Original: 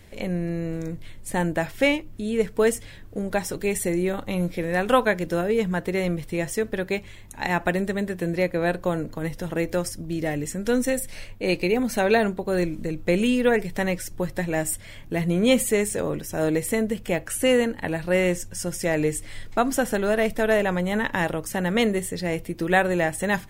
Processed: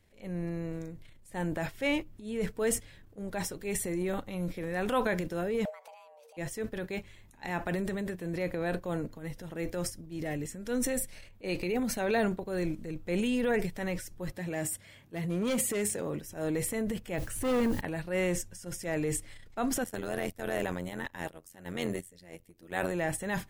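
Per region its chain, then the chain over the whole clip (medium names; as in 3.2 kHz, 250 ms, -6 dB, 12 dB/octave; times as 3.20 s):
5.65–6.37 s: peaking EQ 5.5 kHz +5 dB 0.7 oct + compression 10:1, threshold -34 dBFS + frequency shift +440 Hz
14.32–16.20 s: high-pass 86 Hz + hard clipper -17.5 dBFS
17.18–17.81 s: bass shelf 350 Hz +11.5 dB + hard clipper -16 dBFS + word length cut 8-bit, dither triangular
19.84–22.92 s: gate -26 dBFS, range -12 dB + treble shelf 5 kHz +8.5 dB + AM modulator 88 Hz, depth 85%
whole clip: gate -28 dBFS, range -10 dB; transient shaper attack -6 dB, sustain +8 dB; trim -8 dB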